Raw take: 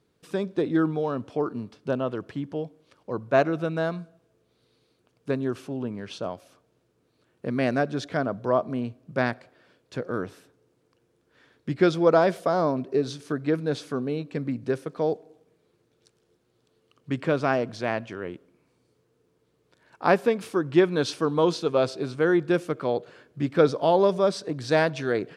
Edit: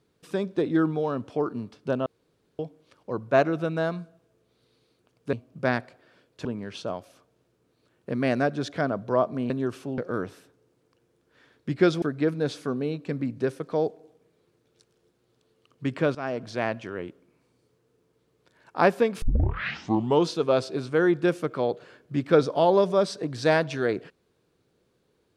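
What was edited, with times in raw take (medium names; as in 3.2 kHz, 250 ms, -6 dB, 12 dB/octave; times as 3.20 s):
2.06–2.59 s: room tone
5.33–5.81 s: swap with 8.86–9.98 s
12.02–13.28 s: delete
17.41–17.97 s: fade in equal-power, from -15.5 dB
20.48 s: tape start 1.02 s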